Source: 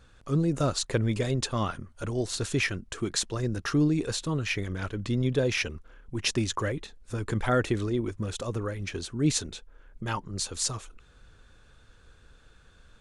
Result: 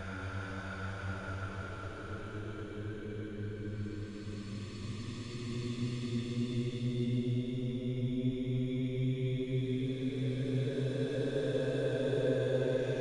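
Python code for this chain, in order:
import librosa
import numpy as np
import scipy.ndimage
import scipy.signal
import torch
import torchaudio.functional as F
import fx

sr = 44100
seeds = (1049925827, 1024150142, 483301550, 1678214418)

y = fx.paulstretch(x, sr, seeds[0], factor=20.0, window_s=0.25, from_s=4.79)
y = y * 10.0 ** (-7.5 / 20.0)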